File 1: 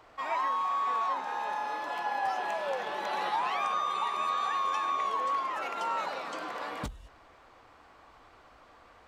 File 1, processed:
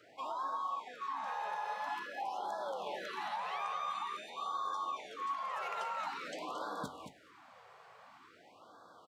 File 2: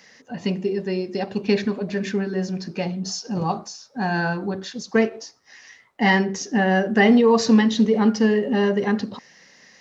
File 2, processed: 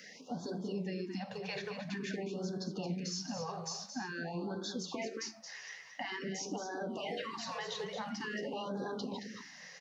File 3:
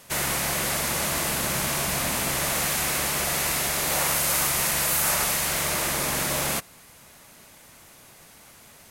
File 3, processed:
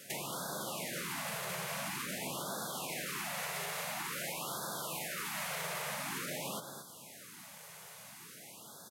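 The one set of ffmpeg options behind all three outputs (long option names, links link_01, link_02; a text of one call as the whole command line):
ffmpeg -i in.wav -filter_complex "[0:a]afftfilt=real='re*lt(hypot(re,im),0.631)':imag='im*lt(hypot(re,im),0.631)':win_size=1024:overlap=0.75,highpass=frequency=130:width=0.5412,highpass=frequency=130:width=1.3066,acrossover=split=3700[link_01][link_02];[link_02]acompressor=threshold=-31dB:ratio=4:attack=1:release=60[link_03];[link_01][link_03]amix=inputs=2:normalize=0,alimiter=limit=-22dB:level=0:latency=1:release=79,acompressor=threshold=-35dB:ratio=5,aecho=1:1:223:0.398,flanger=delay=8.9:depth=3.6:regen=78:speed=1.5:shape=triangular,afftfilt=real='re*(1-between(b*sr/1024,250*pow(2400/250,0.5+0.5*sin(2*PI*0.48*pts/sr))/1.41,250*pow(2400/250,0.5+0.5*sin(2*PI*0.48*pts/sr))*1.41))':imag='im*(1-between(b*sr/1024,250*pow(2400/250,0.5+0.5*sin(2*PI*0.48*pts/sr))/1.41,250*pow(2400/250,0.5+0.5*sin(2*PI*0.48*pts/sr))*1.41))':win_size=1024:overlap=0.75,volume=3dB" out.wav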